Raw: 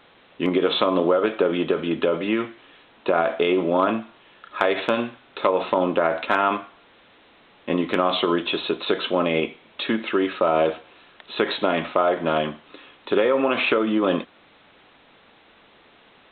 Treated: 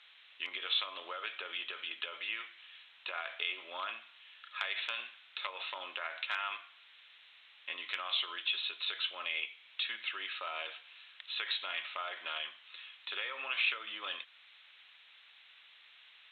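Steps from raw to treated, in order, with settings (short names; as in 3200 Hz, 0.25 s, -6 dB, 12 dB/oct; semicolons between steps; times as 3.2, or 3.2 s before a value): Chebyshev high-pass 2800 Hz, order 2; in parallel at +2 dB: compressor 16:1, threshold -40 dBFS, peak gain reduction 19.5 dB; on the sum: requantised 12-bit, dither none; air absorption 78 m; gain -5.5 dB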